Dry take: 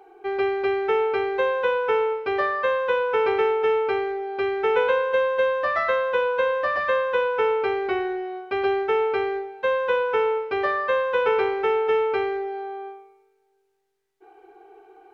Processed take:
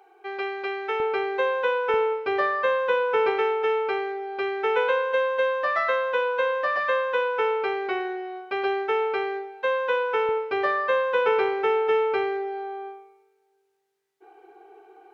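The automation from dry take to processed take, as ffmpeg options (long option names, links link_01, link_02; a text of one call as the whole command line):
ffmpeg -i in.wav -af "asetnsamples=nb_out_samples=441:pad=0,asendcmd='1 highpass f 380;1.94 highpass f 170;3.3 highpass f 450;10.29 highpass f 200',highpass=frequency=990:poles=1" out.wav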